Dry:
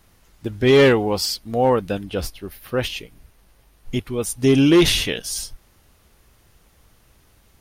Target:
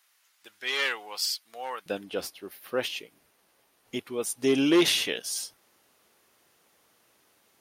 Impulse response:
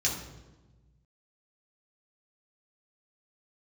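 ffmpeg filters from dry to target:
-af "asetnsamples=nb_out_samples=441:pad=0,asendcmd='1.86 highpass f 310',highpass=1400,volume=-5dB"

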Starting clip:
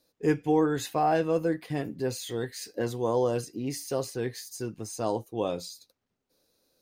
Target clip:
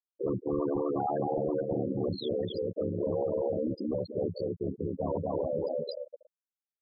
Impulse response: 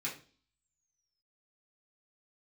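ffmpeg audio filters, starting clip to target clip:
-filter_complex "[0:a]afreqshift=14,asplit=2[link_01][link_02];[link_02]aecho=0:1:240|480|720:0.668|0.12|0.0217[link_03];[link_01][link_03]amix=inputs=2:normalize=0,acompressor=mode=upward:threshold=-33dB:ratio=2.5,equalizer=frequency=125:width_type=o:width=1:gain=7,equalizer=frequency=250:width_type=o:width=1:gain=7,equalizer=frequency=500:width_type=o:width=1:gain=8,equalizer=frequency=1000:width_type=o:width=1:gain=7,equalizer=frequency=2000:width_type=o:width=1:gain=6,equalizer=frequency=4000:width_type=o:width=1:gain=11,asplit=2[link_04][link_05];[link_05]adelay=181,lowpass=frequency=3500:poles=1,volume=-18.5dB,asplit=2[link_06][link_07];[link_07]adelay=181,lowpass=frequency=3500:poles=1,volume=0.48,asplit=2[link_08][link_09];[link_09]adelay=181,lowpass=frequency=3500:poles=1,volume=0.48,asplit=2[link_10][link_11];[link_11]adelay=181,lowpass=frequency=3500:poles=1,volume=0.48[link_12];[link_06][link_08][link_10][link_12]amix=inputs=4:normalize=0[link_13];[link_04][link_13]amix=inputs=2:normalize=0,acrossover=split=330|3000[link_14][link_15][link_16];[link_15]acompressor=threshold=-22dB:ratio=2[link_17];[link_14][link_17][link_16]amix=inputs=3:normalize=0,asoftclip=type=hard:threshold=-24.5dB,afftfilt=real='re*gte(hypot(re,im),0.126)':imag='im*gte(hypot(re,im),0.126)':win_size=1024:overlap=0.75,aeval=exprs='val(0)*sin(2*PI*36*n/s)':channel_layout=same"

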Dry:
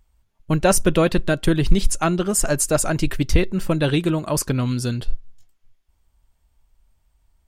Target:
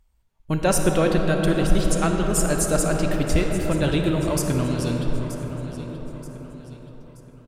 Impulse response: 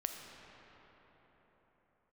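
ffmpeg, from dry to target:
-filter_complex "[0:a]aecho=1:1:928|1856|2784|3712:0.2|0.0798|0.0319|0.0128[link_01];[1:a]atrim=start_sample=2205,asetrate=32634,aresample=44100[link_02];[link_01][link_02]afir=irnorm=-1:irlink=0,volume=-4dB"

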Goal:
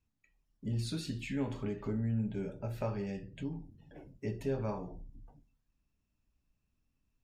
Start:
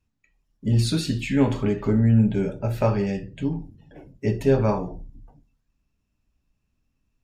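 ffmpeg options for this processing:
ffmpeg -i in.wav -af "acompressor=threshold=-40dB:ratio=1.5,volume=-6.5dB" out.wav

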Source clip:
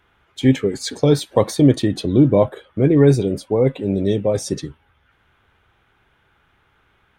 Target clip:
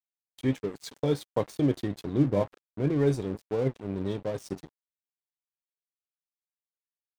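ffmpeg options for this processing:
ffmpeg -i in.wav -af "flanger=delay=6.6:depth=4.6:regen=73:speed=1.4:shape=sinusoidal,aeval=exprs='sgn(val(0))*max(abs(val(0))-0.02,0)':channel_layout=same,volume=-6.5dB" out.wav

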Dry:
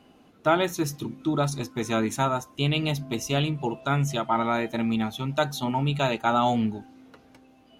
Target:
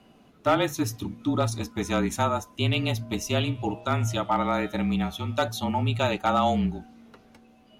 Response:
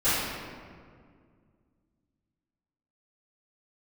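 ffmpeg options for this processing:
-filter_complex "[0:a]afreqshift=-30,asettb=1/sr,asplit=3[link_01][link_02][link_03];[link_01]atrim=end=3.394[link_04];[link_02]atrim=start=3.39:end=5.48,asetpts=PTS-STARTPTS,afade=type=in:duration=0.004:curve=qsin,afade=type=out:start_time=2.086:duration=0.004:curve=qsin,bandreject=frequency=116.4:width_type=h:width=4,bandreject=frequency=232.8:width_type=h:width=4,bandreject=frequency=349.2:width_type=h:width=4,bandreject=frequency=465.6:width_type=h:width=4,bandreject=frequency=582:width_type=h:width=4,bandreject=frequency=698.4:width_type=h:width=4,bandreject=frequency=814.8:width_type=h:width=4,bandreject=frequency=931.2:width_type=h:width=4,bandreject=frequency=1047.6:width_type=h:width=4,bandreject=frequency=1164:width_type=h:width=4,bandreject=frequency=1280.4:width_type=h:width=4,bandreject=frequency=1396.8:width_type=h:width=4,bandreject=frequency=1513.2:width_type=h:width=4,bandreject=frequency=1629.6:width_type=h:width=4,bandreject=frequency=1746:width_type=h:width=4,bandreject=frequency=1862.4:width_type=h:width=4,bandreject=frequency=1978.8:width_type=h:width=4,bandreject=frequency=2095.2:width_type=h:width=4,bandreject=frequency=2211.6:width_type=h:width=4,bandreject=frequency=2328:width_type=h:width=4,bandreject=frequency=2444.4:width_type=h:width=4,bandreject=frequency=2560.8:width_type=h:width=4,bandreject=frequency=2677.2:width_type=h:width=4,bandreject=frequency=2793.6:width_type=h:width=4,bandreject=frequency=2910:width_type=h:width=4,bandreject=frequency=3026.4:width_type=h:width=4,bandreject=frequency=3142.8:width_type=h:width=4,bandreject=frequency=3259.2:width_type=h:width=4,bandreject=frequency=3375.6:width_type=h:width=4,bandreject=frequency=3492:width_type=h:width=4,bandreject=frequency=3608.4:width_type=h:width=4,bandreject=frequency=3724.8:width_type=h:width=4,bandreject=frequency=3841.2:width_type=h:width=4[link_05];[link_03]atrim=start=5.476[link_06];[link_04][link_05]acrossfade=duration=0.004:curve1=hsin:curve2=qsin[link_07];[link_07][link_06]acrossfade=duration=0.004:curve1=qsin:curve2=hsin,asoftclip=type=hard:threshold=-13.5dB"

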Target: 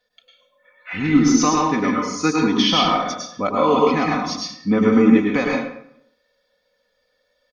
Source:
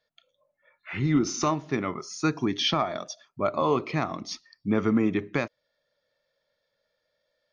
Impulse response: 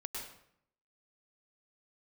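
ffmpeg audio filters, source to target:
-filter_complex "[0:a]aecho=1:1:4:0.76[link_01];[1:a]atrim=start_sample=2205[link_02];[link_01][link_02]afir=irnorm=-1:irlink=0,volume=8dB"

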